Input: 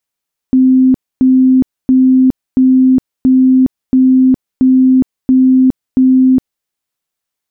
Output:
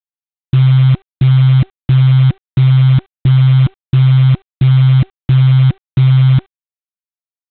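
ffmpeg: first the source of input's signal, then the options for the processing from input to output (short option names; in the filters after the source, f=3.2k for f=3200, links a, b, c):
-f lavfi -i "aevalsrc='0.596*sin(2*PI*259*mod(t,0.68))*lt(mod(t,0.68),107/259)':d=6.12:s=44100"
-af "afreqshift=-390,aresample=8000,acrusher=bits=5:dc=4:mix=0:aa=0.000001,aresample=44100"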